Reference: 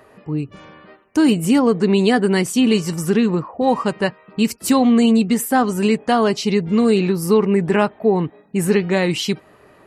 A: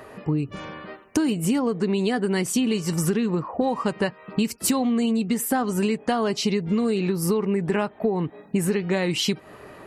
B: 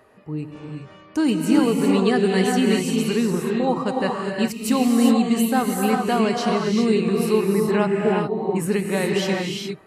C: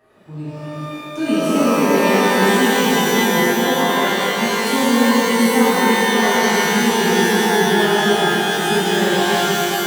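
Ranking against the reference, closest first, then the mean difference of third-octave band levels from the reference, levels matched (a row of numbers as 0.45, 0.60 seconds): A, B, C; 3.5, 7.5, 15.0 decibels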